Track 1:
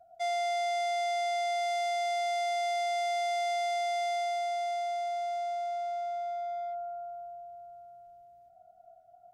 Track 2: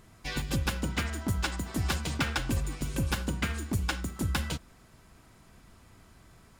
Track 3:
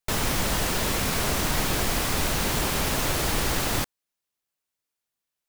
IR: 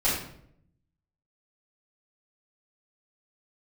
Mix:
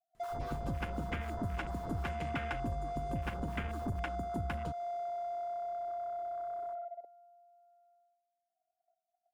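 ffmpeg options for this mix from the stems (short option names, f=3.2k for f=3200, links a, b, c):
-filter_complex "[0:a]highpass=680,adynamicequalizer=threshold=0.00141:dfrequency=1300:dqfactor=2.7:tfrequency=1300:tqfactor=2.7:attack=5:release=100:ratio=0.375:range=3:mode=cutabove:tftype=bell,volume=2dB[a];[1:a]adelay=150,volume=2dB[b];[2:a]acrossover=split=1000[c][d];[c]aeval=exprs='val(0)*(1-1/2+1/2*cos(2*PI*4*n/s))':c=same[e];[d]aeval=exprs='val(0)*(1-1/2-1/2*cos(2*PI*4*n/s))':c=same[f];[e][f]amix=inputs=2:normalize=0,adelay=150,volume=-5.5dB,asplit=3[g][h][i];[g]atrim=end=2.04,asetpts=PTS-STARTPTS,afade=t=out:st=2.036:d=0.004:c=hsin[j];[h]atrim=start=2.04:end=3.22,asetpts=PTS-STARTPTS,volume=0[k];[i]atrim=start=3.22,asetpts=PTS-STARTPTS,afade=t=in:d=0.004:c=hsin[l];[j][k][l]concat=n=3:v=0:a=1[m];[a][m]amix=inputs=2:normalize=0,equalizer=f=84:t=o:w=0.91:g=7.5,alimiter=level_in=2dB:limit=-24dB:level=0:latency=1:release=42,volume=-2dB,volume=0dB[n];[b][n]amix=inputs=2:normalize=0,agate=range=-12dB:threshold=-54dB:ratio=16:detection=peak,afwtdn=0.0282,acompressor=threshold=-38dB:ratio=2.5"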